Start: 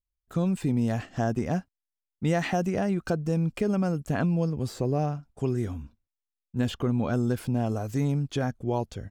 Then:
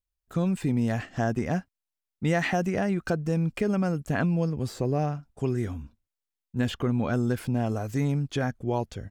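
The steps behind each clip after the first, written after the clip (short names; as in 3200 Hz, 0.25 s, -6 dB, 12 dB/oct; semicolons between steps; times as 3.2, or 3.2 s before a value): dynamic EQ 1900 Hz, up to +5 dB, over -50 dBFS, Q 1.6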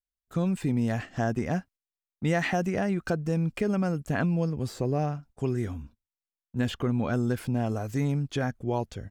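gate -49 dBFS, range -10 dB; gain -1 dB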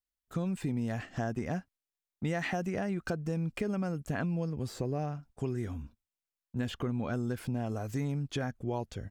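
compressor 2:1, threshold -32 dBFS, peak gain reduction 6.5 dB; gain -1 dB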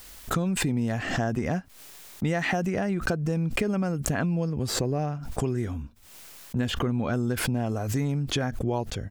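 backwards sustainer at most 53 dB/s; gain +6 dB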